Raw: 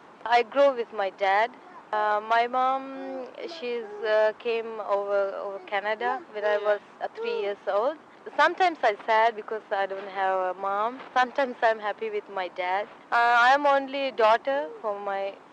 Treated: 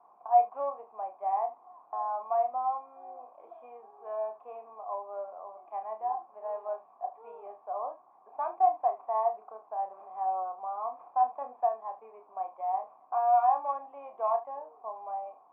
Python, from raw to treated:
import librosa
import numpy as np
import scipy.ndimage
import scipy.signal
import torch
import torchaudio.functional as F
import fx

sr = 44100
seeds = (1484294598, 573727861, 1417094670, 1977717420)

y = fx.formant_cascade(x, sr, vowel='a')
y = fx.room_early_taps(y, sr, ms=(32, 75), db=(-6.5, -16.5))